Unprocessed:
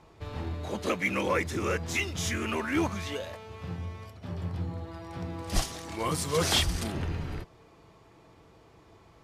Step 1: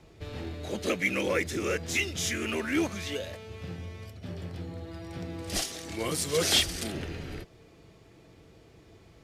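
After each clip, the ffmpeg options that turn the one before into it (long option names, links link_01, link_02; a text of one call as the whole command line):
ffmpeg -i in.wav -filter_complex "[0:a]equalizer=frequency=1000:width_type=o:width=0.9:gain=-11.5,acrossover=split=260|2800[link_01][link_02][link_03];[link_01]acompressor=threshold=-41dB:ratio=6[link_04];[link_04][link_02][link_03]amix=inputs=3:normalize=0,volume=3dB" out.wav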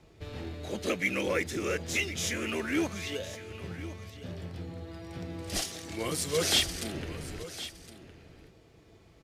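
ffmpeg -i in.wav -filter_complex "[0:a]asplit=2[link_01][link_02];[link_02]aeval=exprs='sgn(val(0))*max(abs(val(0))-0.00237,0)':channel_layout=same,volume=-12dB[link_03];[link_01][link_03]amix=inputs=2:normalize=0,aecho=1:1:1063:0.188,volume=-3.5dB" out.wav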